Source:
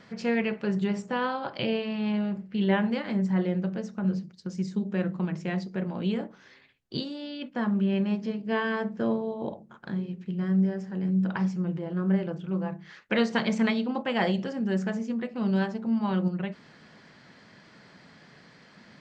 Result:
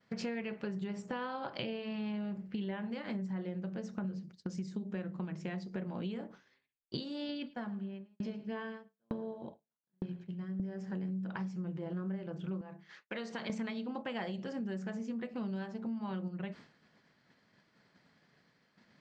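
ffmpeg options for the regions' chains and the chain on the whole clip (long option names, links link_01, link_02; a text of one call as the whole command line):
ffmpeg -i in.wav -filter_complex "[0:a]asettb=1/sr,asplit=3[link_01][link_02][link_03];[link_01]atrim=end=7.294[link_04];[link_02]atrim=start=7.29:end=10.6,asetpts=PTS-STARTPTS,afade=type=in:duration=0.004:curve=qsin,afade=type=out:start_time=3.306:duration=0.004:curve=qsin,aphaser=in_gain=1:out_gain=1:delay=1.4:decay=0.29:speed=1.5:type=sinusoidal,aecho=1:1:108|216|324|432|540:0.178|0.0978|0.0538|0.0296|0.0163,atrim=end_sample=145971,aeval=exprs='val(0)*pow(10,-32*if(lt(mod(1.1*n/s,1),2*abs(1.1)/1000),1-mod(1.1*n/s,1)/(2*abs(1.1)/1000),(mod(1.1*n/s,1)-2*abs(1.1)/1000)/(1-2*abs(1.1)/1000))/20)':channel_layout=same[link_05];[link_03]atrim=start=10.596[link_06];[link_04][link_05]acrossfade=duration=0.004:curve1=hsin:curve2=qsin[link_07];[link_07][link_06]acrossfade=duration=0.004:curve1=qsin:curve2=hsin,asettb=1/sr,asplit=3[link_08][link_09][link_10];[link_08]atrim=end=12.614[link_11];[link_09]atrim=start=12.61:end=13.5,asetpts=PTS-STARTPTS,afade=type=in:duration=0.004:curve=qsin,afade=type=out:start_time=0.886:duration=0.004:curve=qsin,acompressor=threshold=-39dB:ratio=3:attack=3.2:release=140:knee=1:detection=peak,highpass=frequency=270:poles=1[link_12];[link_10]atrim=start=13.496[link_13];[link_11][link_12]acrossfade=duration=0.004:curve1=hsin:curve2=qsin[link_14];[link_14][link_13]acrossfade=duration=0.004:curve1=qsin:curve2=hsin,agate=range=-33dB:threshold=-41dB:ratio=3:detection=peak,acompressor=threshold=-38dB:ratio=12,volume=2.5dB" out.wav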